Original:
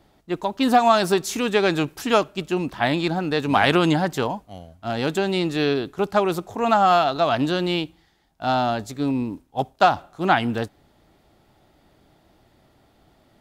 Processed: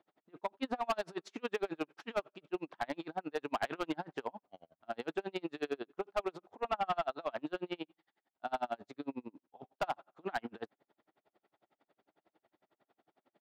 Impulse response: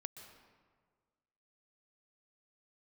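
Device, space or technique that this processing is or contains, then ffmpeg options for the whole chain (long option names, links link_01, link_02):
helicopter radio: -filter_complex "[0:a]highpass=330,lowpass=2600,aeval=exprs='val(0)*pow(10,-37*(0.5-0.5*cos(2*PI*11*n/s))/20)':channel_layout=same,asoftclip=type=hard:threshold=-20dB,asettb=1/sr,asplit=3[link_01][link_02][link_03];[link_01]atrim=end=6.444[link_04];[link_02]atrim=start=6.44:end=8.53,asetpts=PTS-STARTPTS,afade=type=in:duration=0.004:curve=qsin,afade=type=out:start_time=2.086:duration=0.004:curve=qsin,acrossover=split=4300[link_05][link_06];[link_06]acompressor=threshold=-54dB:ratio=4:attack=1:release=60[link_07];[link_05][link_07]amix=inputs=2:normalize=0[link_08];[link_03]atrim=start=8.526[link_09];[link_04][link_08]acrossfade=duration=0.004:curve1=hsin:curve2=qsin[link_10];[link_10][link_09]acrossfade=duration=0.004:curve1=qsin:curve2=hsin,volume=-7dB"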